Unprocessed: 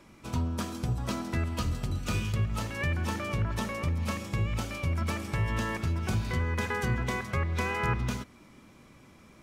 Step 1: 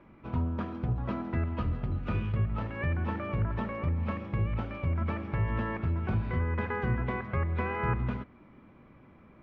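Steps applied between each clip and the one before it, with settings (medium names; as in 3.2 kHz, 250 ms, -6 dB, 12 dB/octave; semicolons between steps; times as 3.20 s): Bessel low-pass 1.7 kHz, order 4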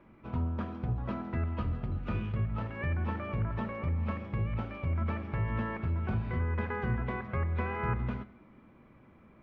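reverberation RT60 0.90 s, pre-delay 5 ms, DRR 14 dB; trim -2.5 dB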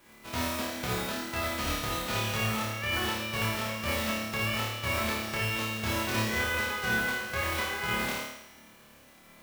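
formants flattened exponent 0.3; feedback comb 250 Hz, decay 1.2 s, mix 60%; flutter echo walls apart 4.7 m, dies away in 0.82 s; trim +5.5 dB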